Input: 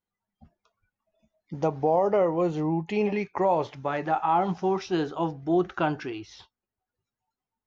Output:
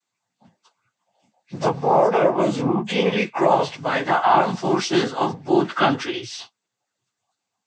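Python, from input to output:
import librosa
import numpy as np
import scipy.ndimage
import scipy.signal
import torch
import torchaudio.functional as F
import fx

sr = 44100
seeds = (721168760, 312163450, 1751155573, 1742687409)

y = fx.freq_snap(x, sr, grid_st=4)
y = fx.noise_vocoder(y, sr, seeds[0], bands=16)
y = y * 10.0 ** (5.5 / 20.0)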